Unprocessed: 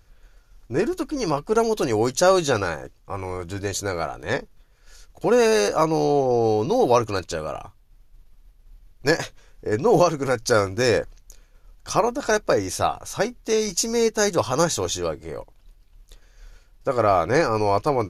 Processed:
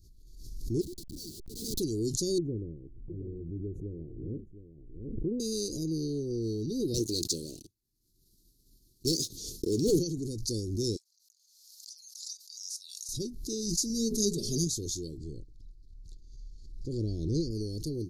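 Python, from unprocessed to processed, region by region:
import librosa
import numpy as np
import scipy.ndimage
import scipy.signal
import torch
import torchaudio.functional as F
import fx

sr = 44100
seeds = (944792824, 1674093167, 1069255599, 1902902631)

y = fx.chain(x, sr, fx.highpass(hz=1000.0, slope=12),
    fx.schmitt(flips_db=-38.0), at=(0.81, 1.8))
y = fx.chain(y, sr, fx.cheby2_lowpass(hz=1800.0, order=4, stop_db=50),
    fx.echo_single(ms=713, db=-12.0), at=(2.38, 5.4))
y = fx.chain(y, sr, fx.highpass(hz=460.0, slope=6),
    fx.gate_hold(open_db=-49.0, close_db=-52.0, hold_ms=71.0, range_db=-21, attack_ms=1.4, release_ms=100.0),
    fx.leveller(passes=3), at=(6.94, 9.99))
y = fx.chain(y, sr, fx.cheby_ripple_highpass(hz=1400.0, ripple_db=6),
    fx.chopper(hz=2.3, depth_pct=65, duty_pct=15), at=(10.96, 13.09))
y = fx.chain(y, sr, fx.hum_notches(base_hz=60, count=9),
    fx.comb(ms=4.9, depth=0.89), at=(13.89, 14.67))
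y = fx.chain(y, sr, fx.lowpass(hz=6100.0, slope=12),
    fx.low_shelf(hz=150.0, db=7.0), at=(15.17, 17.51))
y = scipy.signal.sosfilt(scipy.signal.cheby1(4, 1.0, [370.0, 4200.0], 'bandstop', fs=sr, output='sos'), y)
y = fx.pre_swell(y, sr, db_per_s=47.0)
y = F.gain(torch.from_numpy(y), -6.5).numpy()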